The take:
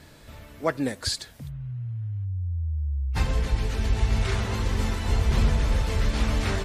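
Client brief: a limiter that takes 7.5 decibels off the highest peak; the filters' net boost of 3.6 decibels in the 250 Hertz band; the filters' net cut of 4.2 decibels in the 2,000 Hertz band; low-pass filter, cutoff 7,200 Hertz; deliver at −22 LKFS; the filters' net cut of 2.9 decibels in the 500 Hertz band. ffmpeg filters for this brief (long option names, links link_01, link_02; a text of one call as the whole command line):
ffmpeg -i in.wav -af "lowpass=7200,equalizer=frequency=250:width_type=o:gain=5.5,equalizer=frequency=500:width_type=o:gain=-5,equalizer=frequency=2000:width_type=o:gain=-5,volume=7.5dB,alimiter=limit=-11dB:level=0:latency=1" out.wav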